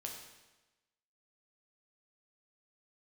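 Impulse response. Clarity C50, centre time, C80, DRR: 4.0 dB, 43 ms, 6.0 dB, 0.0 dB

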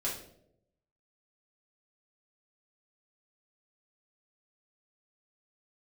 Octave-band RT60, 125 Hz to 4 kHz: 1.1, 0.95, 0.95, 0.60, 0.50, 0.45 seconds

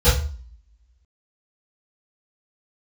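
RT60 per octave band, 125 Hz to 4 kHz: 0.50, 0.55, 0.40, 0.45, 0.40, 0.40 seconds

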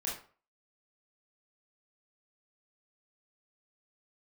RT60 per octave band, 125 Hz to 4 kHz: 0.40, 0.40, 0.40, 0.40, 0.35, 0.30 seconds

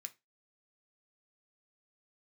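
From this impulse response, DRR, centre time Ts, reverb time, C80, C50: 6.5 dB, 4 ms, 0.20 s, 29.0 dB, 20.0 dB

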